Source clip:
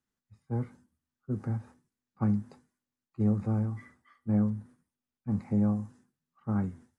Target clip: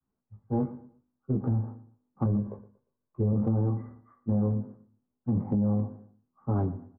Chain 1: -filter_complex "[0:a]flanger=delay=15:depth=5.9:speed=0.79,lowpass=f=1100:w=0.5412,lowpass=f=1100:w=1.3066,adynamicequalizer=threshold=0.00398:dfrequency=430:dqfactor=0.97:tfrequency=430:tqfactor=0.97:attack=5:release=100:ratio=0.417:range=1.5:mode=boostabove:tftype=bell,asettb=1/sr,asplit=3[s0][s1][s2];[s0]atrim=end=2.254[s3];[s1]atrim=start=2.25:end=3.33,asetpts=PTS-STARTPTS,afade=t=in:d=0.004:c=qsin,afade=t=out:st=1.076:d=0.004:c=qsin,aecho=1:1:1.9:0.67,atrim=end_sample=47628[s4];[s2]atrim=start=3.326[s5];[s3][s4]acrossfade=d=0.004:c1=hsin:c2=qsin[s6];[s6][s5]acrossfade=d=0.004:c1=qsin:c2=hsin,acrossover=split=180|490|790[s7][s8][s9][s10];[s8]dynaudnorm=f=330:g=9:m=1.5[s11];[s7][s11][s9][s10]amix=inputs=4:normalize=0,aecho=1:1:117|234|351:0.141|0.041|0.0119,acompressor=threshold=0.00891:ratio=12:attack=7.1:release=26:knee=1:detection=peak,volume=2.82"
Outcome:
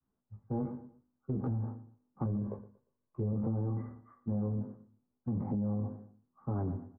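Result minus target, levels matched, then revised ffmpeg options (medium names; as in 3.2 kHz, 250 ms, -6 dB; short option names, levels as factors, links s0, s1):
compression: peak gain reduction +7.5 dB
-filter_complex "[0:a]flanger=delay=15:depth=5.9:speed=0.79,lowpass=f=1100:w=0.5412,lowpass=f=1100:w=1.3066,adynamicequalizer=threshold=0.00398:dfrequency=430:dqfactor=0.97:tfrequency=430:tqfactor=0.97:attack=5:release=100:ratio=0.417:range=1.5:mode=boostabove:tftype=bell,asettb=1/sr,asplit=3[s0][s1][s2];[s0]atrim=end=2.254[s3];[s1]atrim=start=2.25:end=3.33,asetpts=PTS-STARTPTS,afade=t=in:d=0.004:c=qsin,afade=t=out:st=1.076:d=0.004:c=qsin,aecho=1:1:1.9:0.67,atrim=end_sample=47628[s4];[s2]atrim=start=3.326[s5];[s3][s4]acrossfade=d=0.004:c1=hsin:c2=qsin[s6];[s6][s5]acrossfade=d=0.004:c1=qsin:c2=hsin,acrossover=split=180|490|790[s7][s8][s9][s10];[s8]dynaudnorm=f=330:g=9:m=1.5[s11];[s7][s11][s9][s10]amix=inputs=4:normalize=0,aecho=1:1:117|234|351:0.141|0.041|0.0119,acompressor=threshold=0.0224:ratio=12:attack=7.1:release=26:knee=1:detection=peak,volume=2.82"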